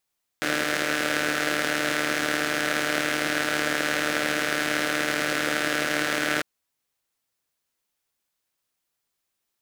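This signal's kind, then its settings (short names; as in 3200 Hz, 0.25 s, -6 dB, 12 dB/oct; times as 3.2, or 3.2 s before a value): four-cylinder engine model, steady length 6.00 s, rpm 4500, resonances 320/540/1500 Hz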